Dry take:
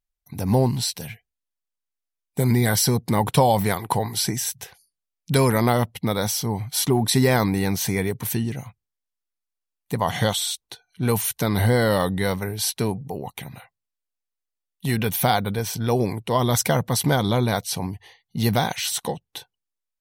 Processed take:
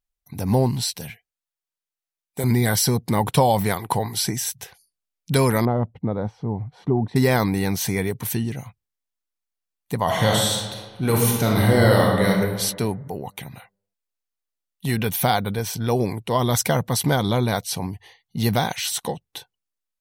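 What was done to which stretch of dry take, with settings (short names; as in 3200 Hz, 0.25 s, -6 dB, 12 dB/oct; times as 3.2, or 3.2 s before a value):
1.1–2.44 low shelf 230 Hz -11.5 dB
5.65–7.16 Bessel low-pass 670 Hz
10.03–12.3 reverb throw, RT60 1.4 s, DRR -1.5 dB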